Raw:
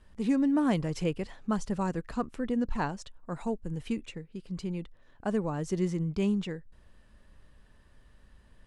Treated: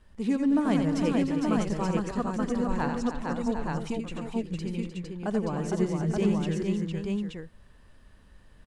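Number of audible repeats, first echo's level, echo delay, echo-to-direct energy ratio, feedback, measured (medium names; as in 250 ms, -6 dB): 6, -6.5 dB, 86 ms, 1.0 dB, no regular repeats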